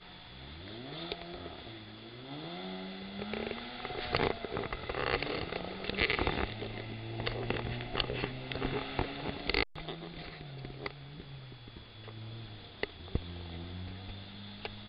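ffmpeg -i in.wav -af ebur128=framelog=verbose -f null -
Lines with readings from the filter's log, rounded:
Integrated loudness:
  I:         -37.9 LUFS
  Threshold: -48.1 LUFS
Loudness range:
  LRA:         9.3 LU
  Threshold: -57.5 LUFS
  LRA low:   -43.9 LUFS
  LRA high:  -34.5 LUFS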